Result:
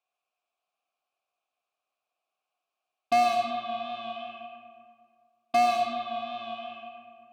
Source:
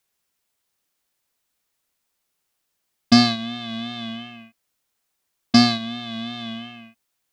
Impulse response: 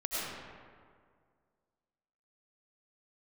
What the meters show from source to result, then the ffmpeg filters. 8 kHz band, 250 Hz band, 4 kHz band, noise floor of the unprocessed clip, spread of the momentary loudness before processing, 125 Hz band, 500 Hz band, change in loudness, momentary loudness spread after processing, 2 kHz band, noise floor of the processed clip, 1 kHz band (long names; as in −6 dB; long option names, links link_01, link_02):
−10.0 dB, −21.5 dB, −15.5 dB, −76 dBFS, 19 LU, below −25 dB, +4.0 dB, −7.5 dB, 19 LU, −7.0 dB, below −85 dBFS, +4.0 dB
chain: -filter_complex "[0:a]asplit=3[link_01][link_02][link_03];[link_01]bandpass=frequency=730:width_type=q:width=8,volume=0dB[link_04];[link_02]bandpass=frequency=1090:width_type=q:width=8,volume=-6dB[link_05];[link_03]bandpass=frequency=2440:width_type=q:width=8,volume=-9dB[link_06];[link_04][link_05][link_06]amix=inputs=3:normalize=0,asoftclip=type=hard:threshold=-24dB,asplit=2[link_07][link_08];[1:a]atrim=start_sample=2205,highshelf=frequency=4100:gain=9.5[link_09];[link_08][link_09]afir=irnorm=-1:irlink=0,volume=-8.5dB[link_10];[link_07][link_10]amix=inputs=2:normalize=0,volume=4dB"